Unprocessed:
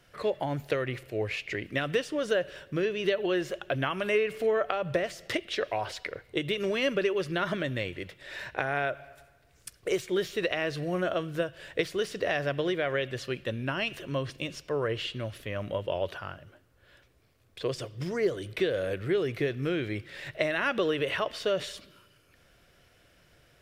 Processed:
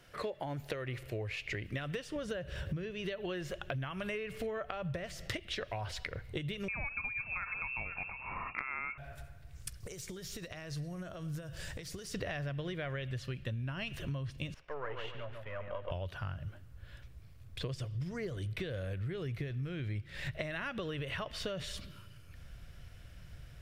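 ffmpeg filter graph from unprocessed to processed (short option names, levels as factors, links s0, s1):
-filter_complex "[0:a]asettb=1/sr,asplit=3[s0][s1][s2];[s0]atrim=end=2.164[s3];[s1]atrim=start=2.16:end=2.91,asetpts=PTS-STARTPTS,afade=t=in:d=0.004:c=qsin,afade=t=out:st=0.746:d=0.004:c=qsin,lowshelf=f=170:g=11.5,acompressor=mode=upward:threshold=0.0224:ratio=2.5:attack=3.2:release=140:knee=2.83:detection=peak,highpass=42[s4];[s2]atrim=start=2.906[s5];[s3][s4]acrossfade=d=0.004:c1=hsin:c2=qsin[s6];[s6][s5]acrossfade=d=0.004:c1=qsin:c2=hsin,asettb=1/sr,asplit=3[s7][s8][s9];[s7]atrim=end=6.684[s10];[s8]atrim=start=6.68:end=8.98,asetpts=PTS-STARTPTS,afade=t=in:d=0.004:c=qsin,afade=t=out:st=2.296:d=0.004:c=qsin,aecho=1:1:493:0.168,atrim=end_sample=101430,lowpass=f=2400:t=q:w=0.5098,lowpass=f=2400:t=q:w=0.6013,lowpass=f=2400:t=q:w=0.9,lowpass=f=2400:t=q:w=2.563,afreqshift=-2800[s11];[s9]atrim=start=8.976[s12];[s10][s11]acrossfade=d=0.004:c1=hsin:c2=qsin[s13];[s13][s12]acrossfade=d=0.004:c1=qsin:c2=hsin,asettb=1/sr,asplit=3[s14][s15][s16];[s14]atrim=end=9.804[s17];[s15]atrim=start=9.8:end=12.14,asetpts=PTS-STARTPTS,afade=t=in:d=0.004:c=qsin,afade=t=out:st=2.336:d=0.004:c=qsin,highshelf=f=4200:t=q:w=1.5:g=8,acompressor=threshold=0.00891:ratio=20:attack=3.2:release=140:knee=1:detection=peak,aecho=1:1:111:0.1,atrim=end_sample=103194[s18];[s16]atrim=start=12.136[s19];[s17][s18]acrossfade=d=0.004:c1=hsin:c2=qsin[s20];[s20][s19]acrossfade=d=0.004:c1=qsin:c2=hsin,asettb=1/sr,asplit=3[s21][s22][s23];[s21]atrim=end=14.544[s24];[s22]atrim=start=14.54:end=15.91,asetpts=PTS-STARTPTS,afade=t=in:d=0.004:c=qsin,afade=t=out:st=1.366:d=0.004:c=qsin,aeval=exprs='if(lt(val(0),0),0.447*val(0),val(0))':c=same,acrossover=split=450 2400:gain=0.1 1 0.0891[s25][s26][s27];[s25][s26][s27]amix=inputs=3:normalize=0,asplit=2[s28][s29];[s29]adelay=141,lowpass=f=1800:p=1,volume=0.562,asplit=2[s30][s31];[s31]adelay=141,lowpass=f=1800:p=1,volume=0.38,asplit=2[s32][s33];[s33]adelay=141,lowpass=f=1800:p=1,volume=0.38,asplit=2[s34][s35];[s35]adelay=141,lowpass=f=1800:p=1,volume=0.38,asplit=2[s36][s37];[s37]adelay=141,lowpass=f=1800:p=1,volume=0.38[s38];[s28][s30][s32][s34][s36][s38]amix=inputs=6:normalize=0,atrim=end_sample=60417[s39];[s23]atrim=start=15.906[s40];[s24][s39]acrossfade=d=0.004:c1=hsin:c2=qsin[s41];[s41][s40]acrossfade=d=0.004:c1=qsin:c2=hsin,asubboost=boost=7.5:cutoff=130,acompressor=threshold=0.0158:ratio=12,volume=1.12"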